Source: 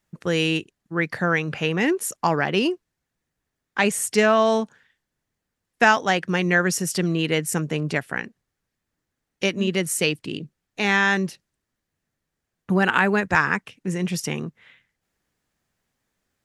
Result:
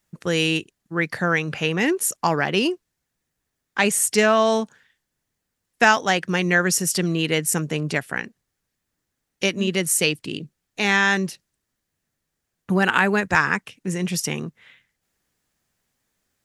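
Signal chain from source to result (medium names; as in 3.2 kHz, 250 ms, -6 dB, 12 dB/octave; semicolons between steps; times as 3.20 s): treble shelf 4.1 kHz +6.5 dB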